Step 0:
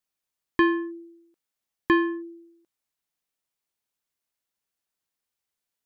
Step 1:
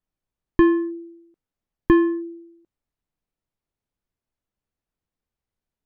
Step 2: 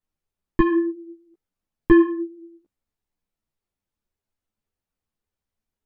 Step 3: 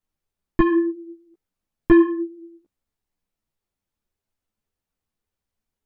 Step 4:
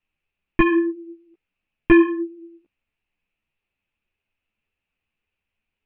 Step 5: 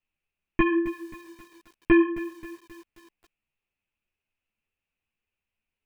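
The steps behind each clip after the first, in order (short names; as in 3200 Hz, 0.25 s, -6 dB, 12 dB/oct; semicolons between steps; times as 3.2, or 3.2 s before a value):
tilt -4 dB/oct
ensemble effect; gain +3 dB
soft clip -4.5 dBFS, distortion -22 dB; gain +1.5 dB
synth low-pass 2600 Hz, resonance Q 7.5
lo-fi delay 0.266 s, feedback 55%, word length 6-bit, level -14.5 dB; gain -5.5 dB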